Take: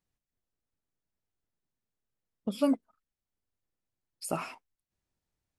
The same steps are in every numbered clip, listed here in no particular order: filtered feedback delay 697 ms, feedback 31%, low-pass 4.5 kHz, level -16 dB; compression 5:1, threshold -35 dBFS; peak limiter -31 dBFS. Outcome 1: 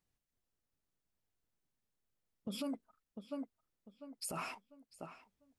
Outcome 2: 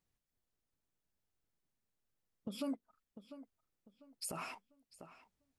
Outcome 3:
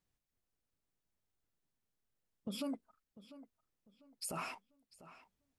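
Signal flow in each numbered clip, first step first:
filtered feedback delay > peak limiter > compression; compression > filtered feedback delay > peak limiter; peak limiter > compression > filtered feedback delay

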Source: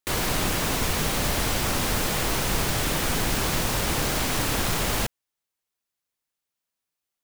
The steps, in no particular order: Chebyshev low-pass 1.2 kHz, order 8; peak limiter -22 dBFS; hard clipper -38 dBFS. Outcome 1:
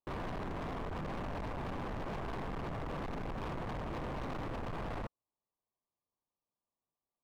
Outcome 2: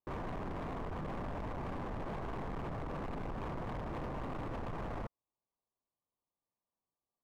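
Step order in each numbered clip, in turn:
Chebyshev low-pass > peak limiter > hard clipper; peak limiter > Chebyshev low-pass > hard clipper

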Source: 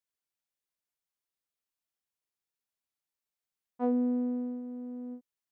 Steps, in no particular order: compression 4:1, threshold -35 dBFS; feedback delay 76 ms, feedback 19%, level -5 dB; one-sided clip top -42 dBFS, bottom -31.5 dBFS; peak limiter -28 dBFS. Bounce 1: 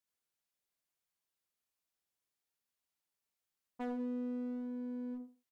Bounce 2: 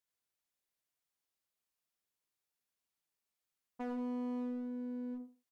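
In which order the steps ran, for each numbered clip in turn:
feedback delay > compression > one-sided clip > peak limiter; feedback delay > peak limiter > one-sided clip > compression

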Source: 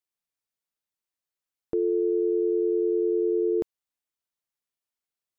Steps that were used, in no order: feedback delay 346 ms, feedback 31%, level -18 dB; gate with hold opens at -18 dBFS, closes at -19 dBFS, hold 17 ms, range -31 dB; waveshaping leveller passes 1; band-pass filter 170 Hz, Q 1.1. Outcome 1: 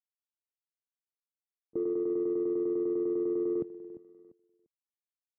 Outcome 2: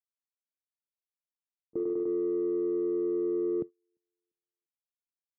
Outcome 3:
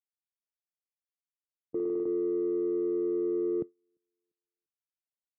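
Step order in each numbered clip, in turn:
gate with hold > feedback delay > waveshaping leveller > band-pass filter; feedback delay > gate with hold > waveshaping leveller > band-pass filter; waveshaping leveller > feedback delay > gate with hold > band-pass filter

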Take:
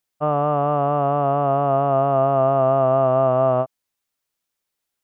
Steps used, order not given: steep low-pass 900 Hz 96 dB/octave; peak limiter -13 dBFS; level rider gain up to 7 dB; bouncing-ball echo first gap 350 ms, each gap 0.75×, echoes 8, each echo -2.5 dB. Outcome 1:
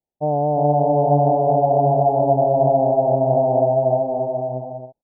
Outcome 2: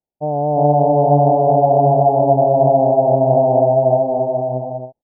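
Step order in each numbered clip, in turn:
steep low-pass > level rider > peak limiter > bouncing-ball echo; steep low-pass > peak limiter > bouncing-ball echo > level rider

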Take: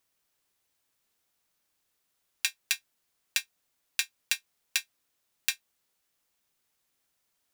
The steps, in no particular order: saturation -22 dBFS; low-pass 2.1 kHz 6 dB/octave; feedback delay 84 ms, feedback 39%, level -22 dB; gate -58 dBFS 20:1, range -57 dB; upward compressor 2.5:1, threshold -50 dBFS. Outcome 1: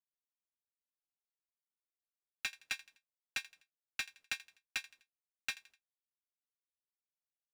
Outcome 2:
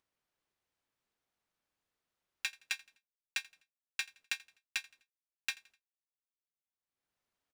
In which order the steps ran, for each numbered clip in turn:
upward compressor > gate > feedback delay > saturation > low-pass; gate > low-pass > upward compressor > saturation > feedback delay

